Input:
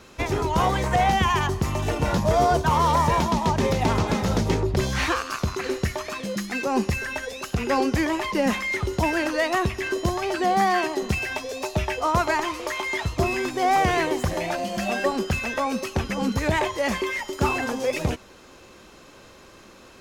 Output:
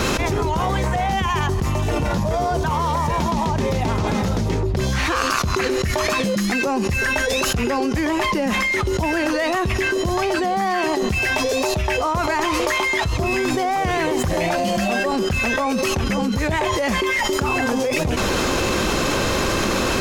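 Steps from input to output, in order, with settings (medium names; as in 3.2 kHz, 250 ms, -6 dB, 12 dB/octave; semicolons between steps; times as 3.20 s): bass shelf 220 Hz +3.5 dB; 13.97–15.05 s: hard clipper -16 dBFS, distortion -35 dB; level flattener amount 100%; trim -5 dB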